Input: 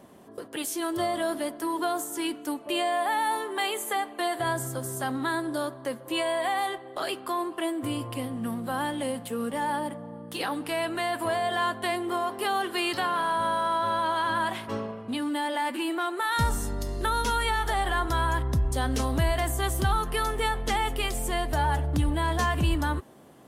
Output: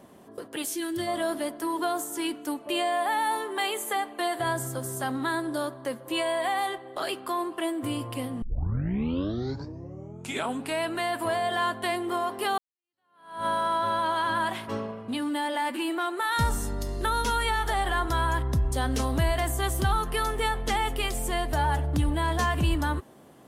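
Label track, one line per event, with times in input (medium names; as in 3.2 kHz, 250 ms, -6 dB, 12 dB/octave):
0.750000	1.070000	time-frequency box 380–1400 Hz -11 dB
8.420000	8.420000	tape start 2.40 s
12.580000	13.460000	fade in exponential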